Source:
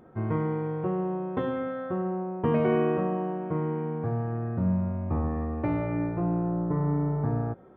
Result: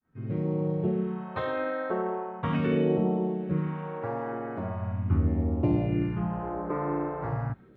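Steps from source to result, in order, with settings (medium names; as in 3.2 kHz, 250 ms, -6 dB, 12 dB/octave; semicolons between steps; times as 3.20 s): fade-in on the opening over 0.65 s; phase shifter stages 2, 0.4 Hz, lowest notch 110–1400 Hz; harmony voices +3 st -4 dB; trim +2 dB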